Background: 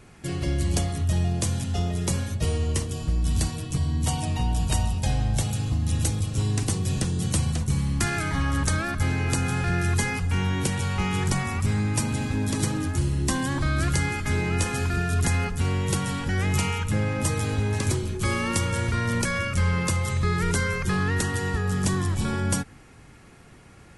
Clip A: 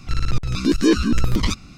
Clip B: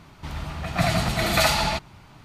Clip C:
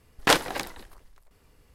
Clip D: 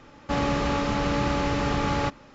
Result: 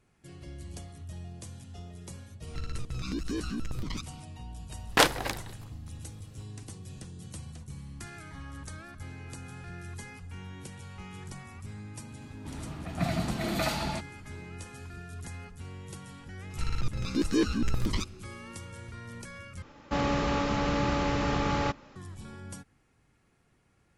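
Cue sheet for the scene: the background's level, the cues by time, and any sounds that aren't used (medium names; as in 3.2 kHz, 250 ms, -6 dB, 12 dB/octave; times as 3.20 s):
background -18.5 dB
2.47 s: add A -9 dB + compression, threshold -21 dBFS
4.70 s: add C -1.5 dB
12.22 s: add B -12.5 dB + peaking EQ 270 Hz +11.5 dB 1.7 oct
16.50 s: add A -10 dB
19.62 s: replace with D -3 dB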